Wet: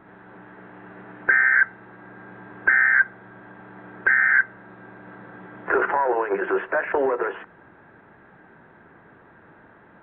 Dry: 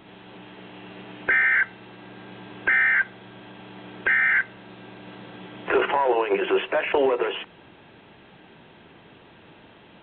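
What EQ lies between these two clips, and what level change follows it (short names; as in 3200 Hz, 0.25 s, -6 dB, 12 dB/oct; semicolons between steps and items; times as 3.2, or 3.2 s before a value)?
resonant high shelf 2200 Hz -11 dB, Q 3; -2.0 dB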